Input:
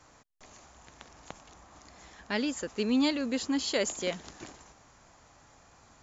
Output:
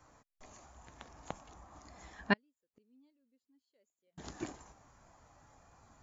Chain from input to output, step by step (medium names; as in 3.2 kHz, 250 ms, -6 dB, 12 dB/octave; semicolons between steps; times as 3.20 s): 2.33–4.18 s: inverted gate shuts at -31 dBFS, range -40 dB; spectral contrast expander 1.5:1; trim +5.5 dB